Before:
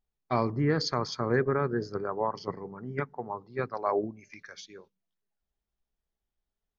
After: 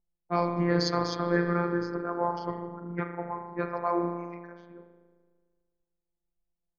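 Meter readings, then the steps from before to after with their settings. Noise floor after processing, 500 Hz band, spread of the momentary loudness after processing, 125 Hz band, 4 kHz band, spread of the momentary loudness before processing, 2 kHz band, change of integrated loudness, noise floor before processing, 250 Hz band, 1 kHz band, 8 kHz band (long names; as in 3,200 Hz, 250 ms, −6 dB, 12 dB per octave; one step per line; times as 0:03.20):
−85 dBFS, −0.5 dB, 12 LU, −0.5 dB, +0.5 dB, 19 LU, +1.0 dB, +1.0 dB, below −85 dBFS, +3.0 dB, +2.0 dB, can't be measured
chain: spring reverb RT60 1.7 s, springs 37 ms, chirp 40 ms, DRR 4.5 dB
phases set to zero 173 Hz
low-pass that shuts in the quiet parts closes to 630 Hz, open at −24 dBFS
level +2.5 dB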